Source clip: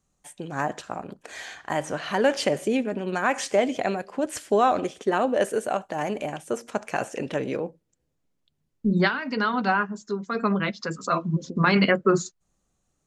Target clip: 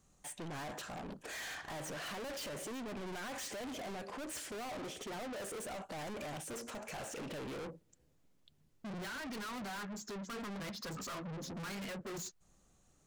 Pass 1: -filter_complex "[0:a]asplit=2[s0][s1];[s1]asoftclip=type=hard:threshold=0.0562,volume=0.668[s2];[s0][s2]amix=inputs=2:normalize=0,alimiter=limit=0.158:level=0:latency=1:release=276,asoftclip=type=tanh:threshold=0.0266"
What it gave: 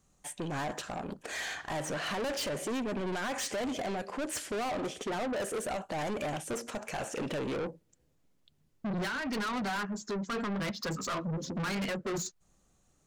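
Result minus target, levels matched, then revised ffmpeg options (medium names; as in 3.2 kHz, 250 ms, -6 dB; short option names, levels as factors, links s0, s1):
saturation: distortion -4 dB
-filter_complex "[0:a]asplit=2[s0][s1];[s1]asoftclip=type=hard:threshold=0.0562,volume=0.668[s2];[s0][s2]amix=inputs=2:normalize=0,alimiter=limit=0.158:level=0:latency=1:release=276,asoftclip=type=tanh:threshold=0.00794"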